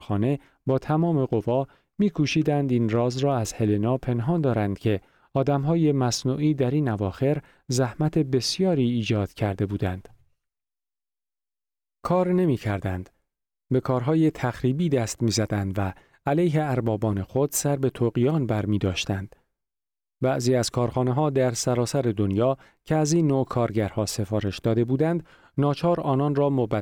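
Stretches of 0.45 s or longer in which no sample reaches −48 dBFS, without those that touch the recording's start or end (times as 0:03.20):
0:10.14–0:12.04
0:13.08–0:13.71
0:19.33–0:20.21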